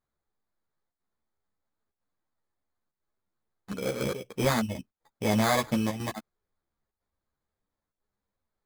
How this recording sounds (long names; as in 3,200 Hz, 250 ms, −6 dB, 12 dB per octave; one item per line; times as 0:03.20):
chopped level 1 Hz, depth 60%, duty 90%
aliases and images of a low sample rate 2,800 Hz, jitter 0%
a shimmering, thickened sound